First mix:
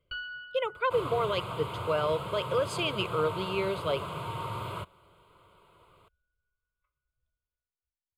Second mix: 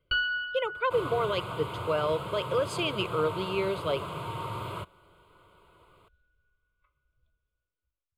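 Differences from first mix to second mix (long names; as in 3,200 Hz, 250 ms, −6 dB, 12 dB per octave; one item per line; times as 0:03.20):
first sound +10.5 dB
master: add parametric band 320 Hz +3 dB 0.62 octaves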